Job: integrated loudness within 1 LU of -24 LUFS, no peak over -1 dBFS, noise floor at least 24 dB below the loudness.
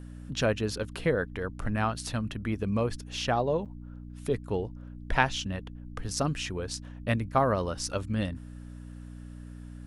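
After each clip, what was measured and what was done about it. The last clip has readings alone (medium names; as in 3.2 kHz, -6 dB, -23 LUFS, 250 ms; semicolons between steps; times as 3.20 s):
dropouts 1; longest dropout 7.7 ms; hum 60 Hz; highest harmonic 300 Hz; hum level -40 dBFS; loudness -30.5 LUFS; peak level -6.0 dBFS; loudness target -24.0 LUFS
-> interpolate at 3.65 s, 7.7 ms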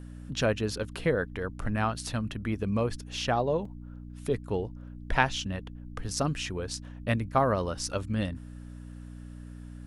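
dropouts 0; hum 60 Hz; highest harmonic 300 Hz; hum level -40 dBFS
-> de-hum 60 Hz, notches 5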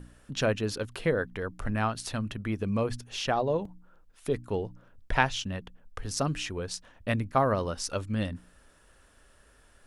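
hum not found; loudness -31.0 LUFS; peak level -6.0 dBFS; loudness target -24.0 LUFS
-> trim +7 dB; peak limiter -1 dBFS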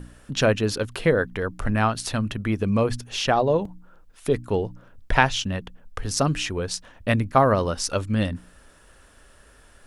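loudness -24.0 LUFS; peak level -1.0 dBFS; noise floor -53 dBFS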